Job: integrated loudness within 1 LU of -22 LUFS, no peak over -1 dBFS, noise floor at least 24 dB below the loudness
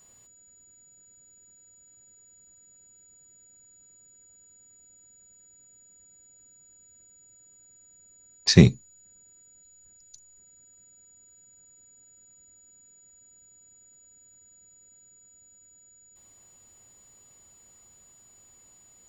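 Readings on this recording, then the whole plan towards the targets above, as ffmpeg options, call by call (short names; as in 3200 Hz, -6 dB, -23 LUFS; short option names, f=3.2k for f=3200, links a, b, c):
steady tone 6900 Hz; tone level -54 dBFS; loudness -19.0 LUFS; peak -1.0 dBFS; loudness target -22.0 LUFS
-> -af "bandreject=f=6.9k:w=30"
-af "volume=-3dB"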